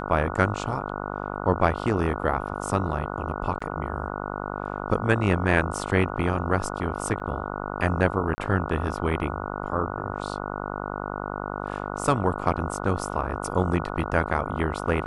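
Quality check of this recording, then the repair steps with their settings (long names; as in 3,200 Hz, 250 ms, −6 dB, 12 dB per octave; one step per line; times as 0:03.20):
mains buzz 50 Hz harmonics 29 −32 dBFS
0:03.59–0:03.60: drop-out 15 ms
0:07.20–0:07.21: drop-out 6.1 ms
0:08.35–0:08.38: drop-out 30 ms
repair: hum removal 50 Hz, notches 29
repair the gap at 0:03.59, 15 ms
repair the gap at 0:07.20, 6.1 ms
repair the gap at 0:08.35, 30 ms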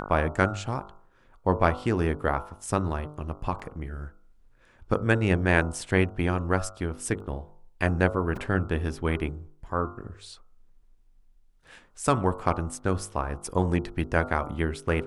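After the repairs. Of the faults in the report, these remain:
none of them is left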